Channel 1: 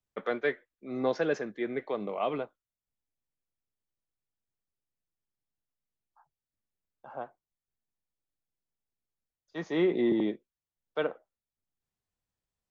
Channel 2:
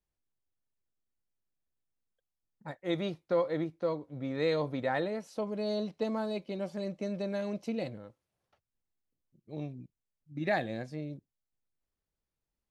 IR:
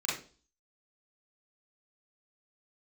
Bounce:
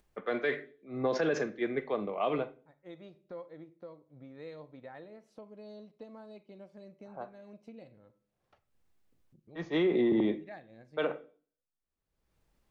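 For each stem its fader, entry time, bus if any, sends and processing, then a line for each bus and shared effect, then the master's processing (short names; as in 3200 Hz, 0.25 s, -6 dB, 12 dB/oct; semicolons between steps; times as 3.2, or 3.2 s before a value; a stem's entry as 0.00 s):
+2.0 dB, 0.00 s, send -18 dB, low-pass opened by the level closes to 1600 Hz, open at -27 dBFS; three-band expander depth 100%
-15.5 dB, 0.00 s, send -20.5 dB, high shelf 3600 Hz -8.5 dB; upward expander 1.5:1, over -41 dBFS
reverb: on, RT60 0.40 s, pre-delay 35 ms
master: upward compressor, threshold -42 dBFS; limiter -20.5 dBFS, peak gain reduction 11 dB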